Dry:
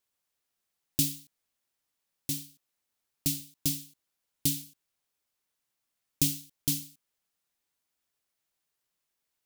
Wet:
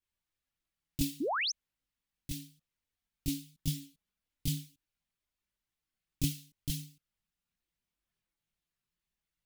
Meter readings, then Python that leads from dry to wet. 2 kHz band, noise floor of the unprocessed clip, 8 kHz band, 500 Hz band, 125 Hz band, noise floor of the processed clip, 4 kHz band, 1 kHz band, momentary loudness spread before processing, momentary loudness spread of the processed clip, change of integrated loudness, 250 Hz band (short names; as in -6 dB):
+9.5 dB, -84 dBFS, -9.5 dB, +11.5 dB, 0.0 dB, under -85 dBFS, -2.5 dB, n/a, 14 LU, 20 LU, -6.0 dB, -1.0 dB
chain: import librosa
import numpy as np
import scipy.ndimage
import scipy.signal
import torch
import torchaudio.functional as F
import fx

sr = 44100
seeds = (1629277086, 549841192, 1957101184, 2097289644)

y = fx.high_shelf(x, sr, hz=2000.0, db=12.0)
y = fx.chorus_voices(y, sr, voices=6, hz=0.51, base_ms=21, depth_ms=3.4, mix_pct=65)
y = fx.bass_treble(y, sr, bass_db=15, treble_db=-13)
y = fx.spec_paint(y, sr, seeds[0], shape='rise', start_s=1.2, length_s=0.32, low_hz=240.0, high_hz=6600.0, level_db=-25.0)
y = y * 10.0 ** (-7.0 / 20.0)